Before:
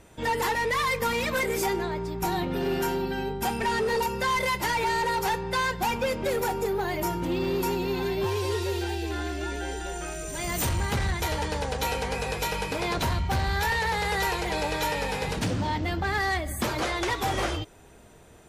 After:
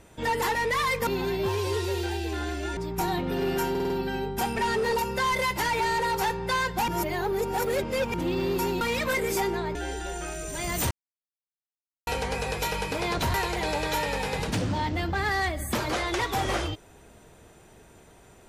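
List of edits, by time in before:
0:01.07–0:02.01: swap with 0:07.85–0:09.55
0:02.94: stutter 0.05 s, 5 plays
0:05.92–0:07.18: reverse
0:10.71–0:11.87: silence
0:13.14–0:14.23: remove

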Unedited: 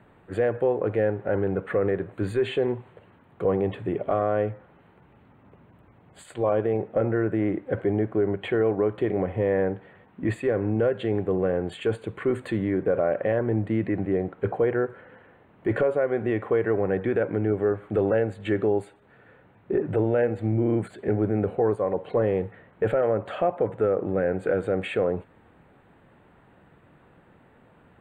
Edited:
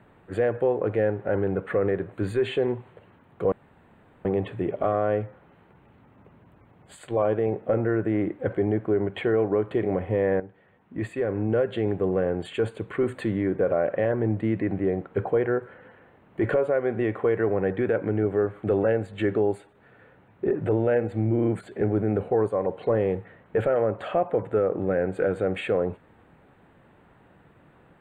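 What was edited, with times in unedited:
0:03.52: splice in room tone 0.73 s
0:09.67–0:10.89: fade in, from −13 dB

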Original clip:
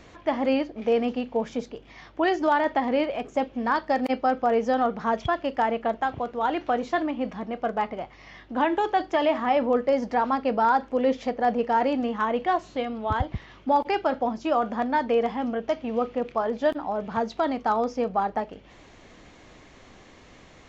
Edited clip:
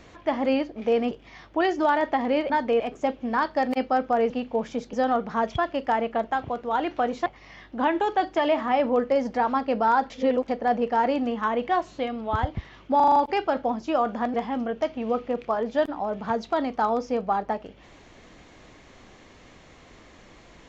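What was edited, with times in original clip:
0:01.11–0:01.74: move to 0:04.63
0:06.96–0:08.03: remove
0:10.87–0:11.25: reverse
0:13.73: stutter 0.04 s, 6 plays
0:14.91–0:15.21: move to 0:03.13

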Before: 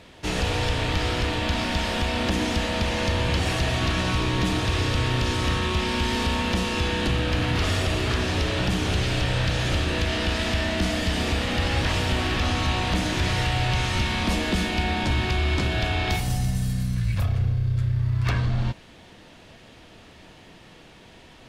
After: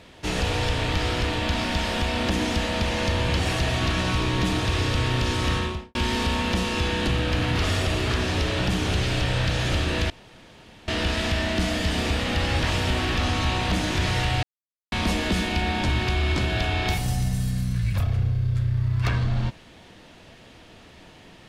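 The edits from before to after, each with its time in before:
0:05.56–0:05.95: fade out and dull
0:10.10: splice in room tone 0.78 s
0:13.65–0:14.14: silence

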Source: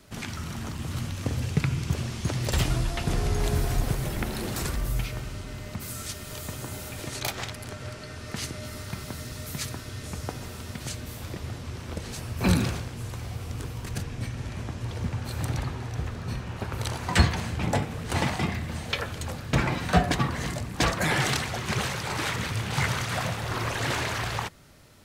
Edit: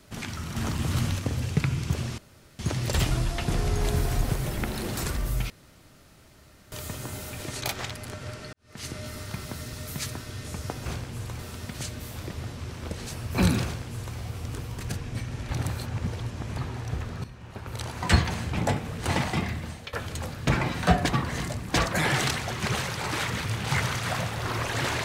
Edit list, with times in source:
0:00.56–0:01.19: clip gain +5.5 dB
0:02.18: splice in room tone 0.41 s
0:05.09–0:06.31: fill with room tone
0:08.12–0:08.51: fade in quadratic
0:12.70–0:13.23: duplicate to 0:10.45
0:14.55–0:15.62: reverse
0:16.30–0:17.29: fade in, from −13.5 dB
0:18.61–0:18.99: fade out, to −16 dB

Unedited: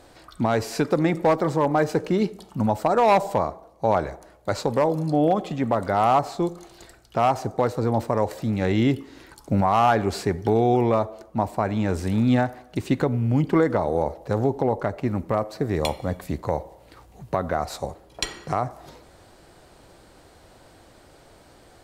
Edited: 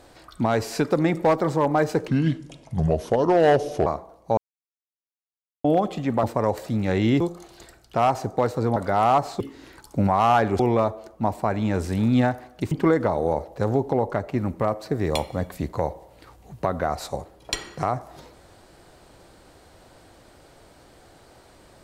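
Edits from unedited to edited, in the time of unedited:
0:02.08–0:03.40: play speed 74%
0:03.91–0:05.18: silence
0:05.77–0:06.41: swap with 0:07.97–0:08.94
0:10.13–0:10.74: remove
0:12.86–0:13.41: remove

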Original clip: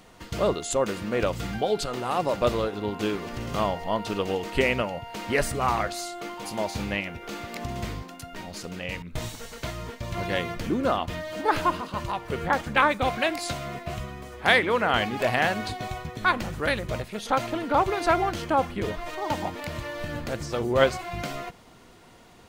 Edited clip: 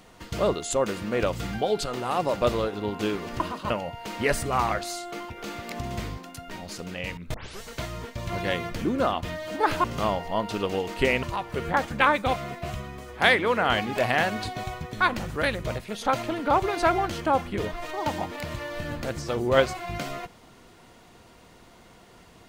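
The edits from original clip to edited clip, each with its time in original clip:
0:03.40–0:04.79: swap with 0:11.69–0:11.99
0:06.39–0:07.15: remove
0:09.19: tape start 0.27 s
0:13.12–0:13.60: remove

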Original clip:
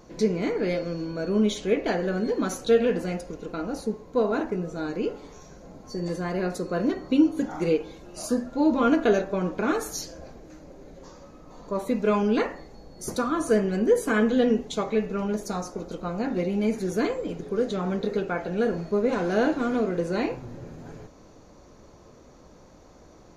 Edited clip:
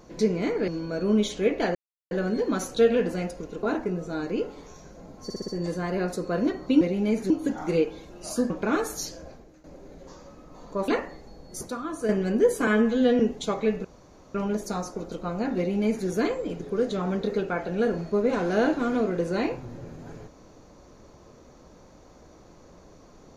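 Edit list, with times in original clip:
0:00.68–0:00.94: remove
0:02.01: splice in silence 0.36 s
0:03.53–0:04.29: remove
0:05.90: stutter 0.06 s, 5 plays
0:08.43–0:09.46: remove
0:10.17–0:10.60: fade out, to −13 dB
0:11.84–0:12.35: remove
0:13.08–0:13.56: clip gain −7 dB
0:14.14–0:14.49: time-stretch 1.5×
0:15.14: splice in room tone 0.50 s
0:16.37–0:16.86: duplicate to 0:07.23

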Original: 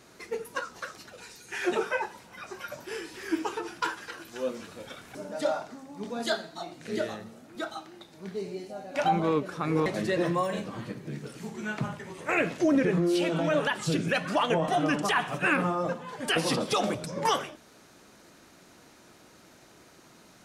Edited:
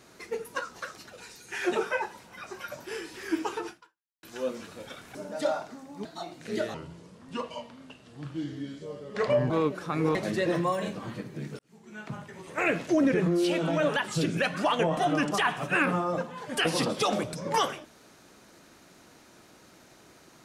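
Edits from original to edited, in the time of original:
0:03.69–0:04.23: fade out exponential
0:06.05–0:06.45: remove
0:07.14–0:09.21: play speed 75%
0:11.30–0:12.41: fade in

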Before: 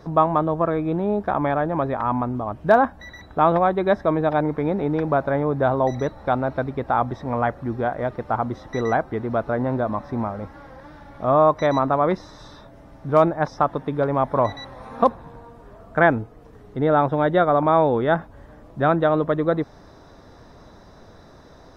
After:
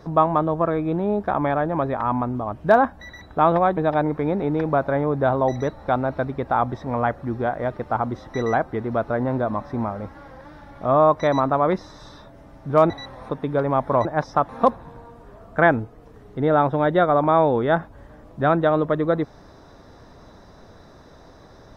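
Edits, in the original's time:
0:03.77–0:04.16: remove
0:13.29–0:13.73: swap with 0:14.49–0:14.88

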